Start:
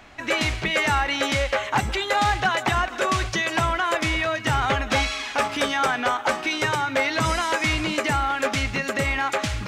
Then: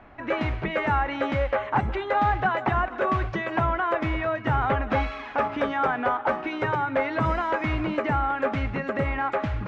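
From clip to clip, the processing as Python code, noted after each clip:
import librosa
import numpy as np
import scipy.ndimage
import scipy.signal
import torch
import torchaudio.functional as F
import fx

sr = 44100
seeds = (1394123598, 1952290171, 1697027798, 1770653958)

y = scipy.signal.sosfilt(scipy.signal.butter(2, 1400.0, 'lowpass', fs=sr, output='sos'), x)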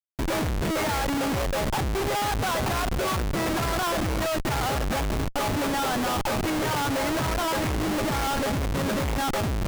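y = fx.schmitt(x, sr, flips_db=-30.5)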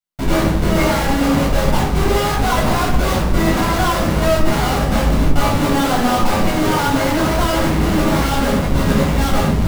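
y = fx.room_shoebox(x, sr, seeds[0], volume_m3=740.0, walls='furnished', distance_m=7.2)
y = y * 10.0 ** (-1.0 / 20.0)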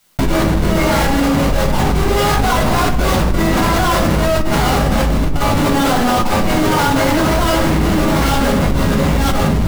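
y = fx.env_flatten(x, sr, amount_pct=100)
y = y * 10.0 ** (-6.5 / 20.0)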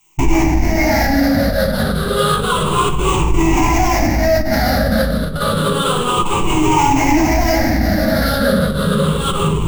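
y = fx.spec_ripple(x, sr, per_octave=0.69, drift_hz=-0.3, depth_db=19)
y = y * 10.0 ** (-4.5 / 20.0)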